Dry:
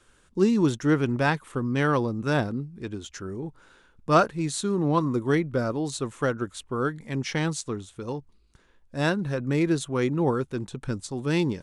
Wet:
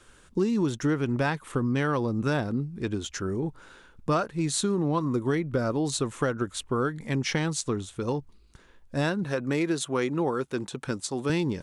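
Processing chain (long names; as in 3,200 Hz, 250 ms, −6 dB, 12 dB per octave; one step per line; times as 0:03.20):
0:09.24–0:11.30: high-pass filter 340 Hz 6 dB per octave
downward compressor 5 to 1, threshold −28 dBFS, peak gain reduction 13.5 dB
level +5 dB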